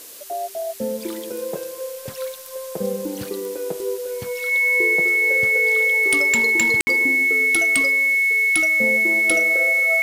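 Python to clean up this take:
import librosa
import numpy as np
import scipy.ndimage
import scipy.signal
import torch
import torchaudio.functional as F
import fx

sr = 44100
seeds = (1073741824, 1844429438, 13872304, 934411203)

y = fx.fix_declip(x, sr, threshold_db=-9.0)
y = fx.notch(y, sr, hz=2200.0, q=30.0)
y = fx.fix_ambience(y, sr, seeds[0], print_start_s=0.0, print_end_s=0.5, start_s=6.81, end_s=6.87)
y = fx.noise_reduce(y, sr, print_start_s=0.0, print_end_s=0.5, reduce_db=30.0)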